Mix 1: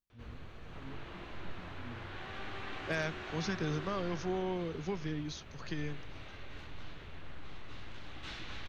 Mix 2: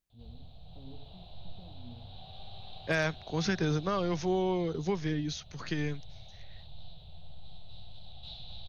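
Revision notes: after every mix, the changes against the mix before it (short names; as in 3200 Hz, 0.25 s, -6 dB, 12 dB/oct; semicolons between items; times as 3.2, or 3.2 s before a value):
second voice +6.0 dB; background: add EQ curve 170 Hz 0 dB, 300 Hz -25 dB, 730 Hz +1 dB, 1100 Hz -21 dB, 1900 Hz -30 dB, 3900 Hz +8 dB, 5800 Hz -17 dB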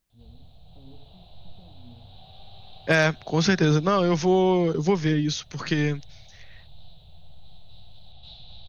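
second voice +9.5 dB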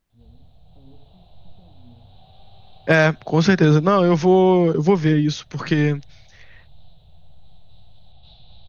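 second voice +6.0 dB; master: add high shelf 3400 Hz -10.5 dB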